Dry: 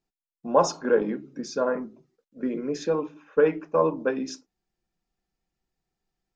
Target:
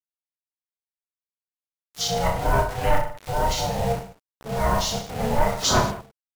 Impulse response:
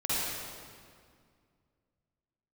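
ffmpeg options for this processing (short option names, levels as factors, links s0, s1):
-filter_complex "[0:a]areverse,highshelf=f=3600:g=12,asplit=2[s0][s1];[s1]acompressor=threshold=0.0251:ratio=16,volume=1.19[s2];[s0][s2]amix=inputs=2:normalize=0,acrusher=bits=5:mix=0:aa=0.000001,aeval=exprs='val(0)*sin(2*PI*440*n/s)':c=same,asplit=2[s3][s4];[s4]asetrate=29433,aresample=44100,atempo=1.49831,volume=0.891[s5];[s3][s5]amix=inputs=2:normalize=0,asoftclip=type=tanh:threshold=0.237,aecho=1:1:30|64.5|104.2|149.8|202.3:0.631|0.398|0.251|0.158|0.1"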